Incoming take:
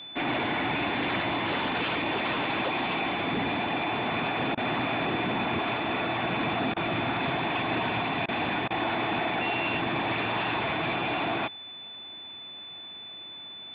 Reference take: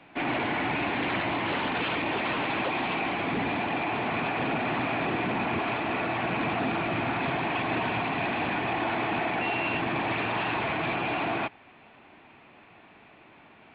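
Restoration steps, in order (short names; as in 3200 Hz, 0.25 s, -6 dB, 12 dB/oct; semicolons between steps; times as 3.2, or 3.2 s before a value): notch 3500 Hz, Q 30; interpolate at 4.55/6.74/8.26/8.68, 23 ms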